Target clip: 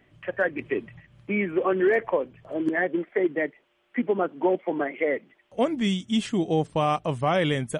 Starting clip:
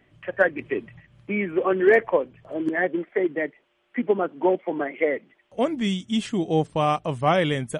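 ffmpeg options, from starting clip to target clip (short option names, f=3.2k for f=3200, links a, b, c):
-af "alimiter=limit=-13.5dB:level=0:latency=1:release=74"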